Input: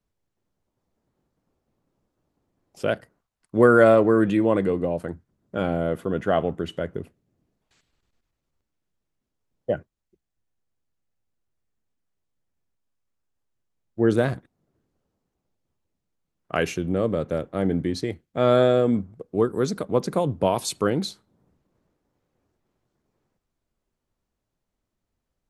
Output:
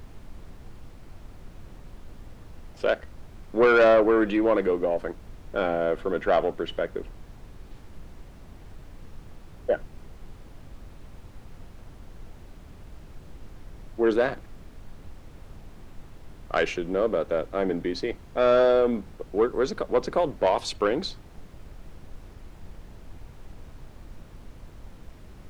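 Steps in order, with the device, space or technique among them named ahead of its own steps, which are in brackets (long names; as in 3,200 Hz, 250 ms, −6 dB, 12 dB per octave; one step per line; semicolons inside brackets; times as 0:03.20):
aircraft cabin announcement (band-pass filter 370–4,000 Hz; soft clipping −15.5 dBFS, distortion −13 dB; brown noise bed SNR 13 dB)
level +3 dB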